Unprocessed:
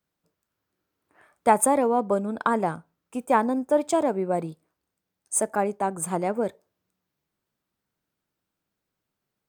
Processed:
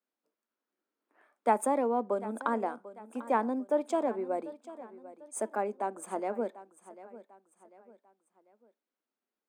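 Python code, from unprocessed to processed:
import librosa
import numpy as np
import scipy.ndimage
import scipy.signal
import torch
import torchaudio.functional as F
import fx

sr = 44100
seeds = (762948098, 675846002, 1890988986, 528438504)

y = scipy.signal.sosfilt(scipy.signal.ellip(4, 1.0, 40, 220.0, 'highpass', fs=sr, output='sos'), x)
y = fx.high_shelf(y, sr, hz=5300.0, db=-10.5)
y = fx.echo_feedback(y, sr, ms=745, feedback_pct=40, wet_db=-16.5)
y = F.gain(torch.from_numpy(y), -6.5).numpy()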